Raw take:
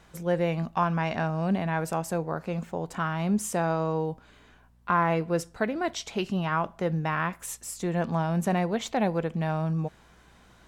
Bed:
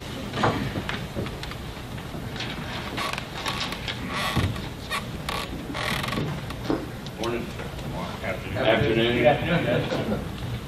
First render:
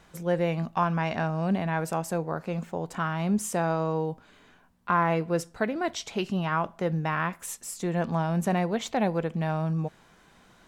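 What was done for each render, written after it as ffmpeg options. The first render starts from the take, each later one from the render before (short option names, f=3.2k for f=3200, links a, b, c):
-af "bandreject=f=60:t=h:w=4,bandreject=f=120:t=h:w=4"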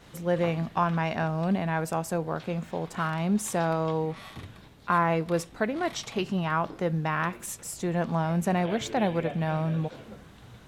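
-filter_complex "[1:a]volume=-18.5dB[a];[0:a][a]amix=inputs=2:normalize=0"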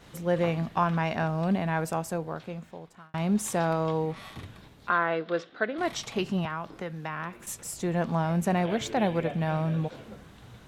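-filter_complex "[0:a]asplit=3[a][b][c];[a]afade=t=out:st=4.89:d=0.02[d];[b]highpass=320,equalizer=f=910:t=q:w=4:g=-9,equalizer=f=1.5k:t=q:w=4:g=6,equalizer=f=2.4k:t=q:w=4:g=-5,equalizer=f=3.5k:t=q:w=4:g=4,lowpass=f=4.2k:w=0.5412,lowpass=f=4.2k:w=1.3066,afade=t=in:st=4.89:d=0.02,afade=t=out:st=5.77:d=0.02[e];[c]afade=t=in:st=5.77:d=0.02[f];[d][e][f]amix=inputs=3:normalize=0,asettb=1/sr,asplit=3[g][h][i];[g]atrim=end=6.454[j];[h]atrim=start=6.45:end=7.47,asetpts=PTS-STARTPTS,afade=t=in:d=0.004:c=qsin,afade=t=out:st=1.016:d=0.004:c=qsin,acrossover=split=240|1100|3300[k][l][m][n];[k]acompressor=threshold=-44dB:ratio=3[o];[l]acompressor=threshold=-39dB:ratio=3[p];[m]acompressor=threshold=-38dB:ratio=3[q];[n]acompressor=threshold=-59dB:ratio=3[r];[o][p][q][r]amix=inputs=4:normalize=0[s];[i]atrim=start=7.466[t];[j][s]acrossfade=d=0.004:c1=hsin:c2=qsin[u];[u][t]acrossfade=d=0.004:c1=qsin:c2=hsin,asplit=2[v][w];[v]atrim=end=3.14,asetpts=PTS-STARTPTS,afade=t=out:st=1.84:d=1.3[x];[w]atrim=start=3.14,asetpts=PTS-STARTPTS,afade=t=in:d=0.004:c=hsin[y];[x][y]concat=n=2:v=0:a=1"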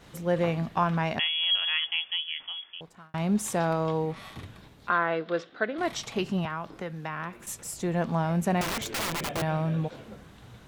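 -filter_complex "[0:a]asettb=1/sr,asplit=3[a][b][c];[a]atrim=end=1.194[d];[b]atrim=start=1.19:end=2.81,asetpts=PTS-STARTPTS,afade=t=in:d=0.004:c=qsin,afade=t=out:st=1.616:d=0.004:c=qsin,lowpass=f=3k:t=q:w=0.5098,lowpass=f=3k:t=q:w=0.6013,lowpass=f=3k:t=q:w=0.9,lowpass=f=3k:t=q:w=2.563,afreqshift=-3500[e];[c]atrim=start=2.806[f];[d][e]acrossfade=d=0.004:c1=hsin:c2=qsin[g];[g][f]acrossfade=d=0.004:c1=qsin:c2=hsin,asettb=1/sr,asplit=3[h][i][j];[h]atrim=end=8.614[k];[i]atrim=start=8.61:end=9.42,asetpts=PTS-STARTPTS,afade=t=in:d=0.004:c=qsin,afade=t=out:st=0.806:d=0.004:c=qsin,aeval=exprs='(mod(18.8*val(0)+1,2)-1)/18.8':c=same[l];[j]atrim=start=9.416[m];[k][l]acrossfade=d=0.004:c1=hsin:c2=qsin[n];[n][m]acrossfade=d=0.004:c1=qsin:c2=hsin"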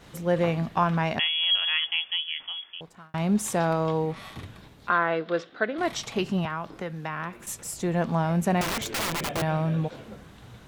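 -af "volume=2dB"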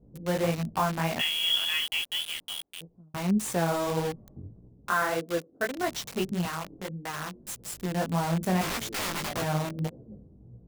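-filter_complex "[0:a]flanger=delay=16.5:depth=5.5:speed=1.7,acrossover=split=490[a][b];[b]acrusher=bits=5:mix=0:aa=0.000001[c];[a][c]amix=inputs=2:normalize=0"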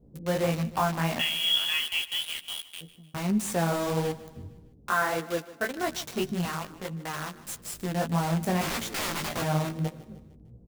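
-filter_complex "[0:a]asplit=2[a][b];[b]adelay=13,volume=-10.5dB[c];[a][c]amix=inputs=2:normalize=0,aecho=1:1:152|304|456|608:0.133|0.064|0.0307|0.0147"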